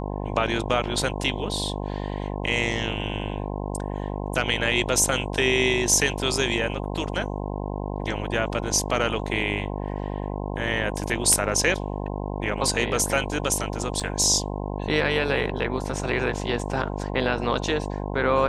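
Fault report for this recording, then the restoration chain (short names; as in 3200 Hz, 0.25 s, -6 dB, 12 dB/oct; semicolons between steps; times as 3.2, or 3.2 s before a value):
buzz 50 Hz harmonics 21 -30 dBFS
14–14.01 gap 5.8 ms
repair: de-hum 50 Hz, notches 21; interpolate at 14, 5.8 ms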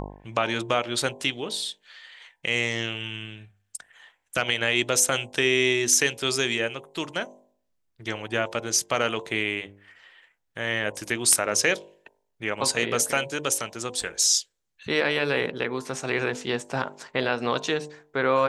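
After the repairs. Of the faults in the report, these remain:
none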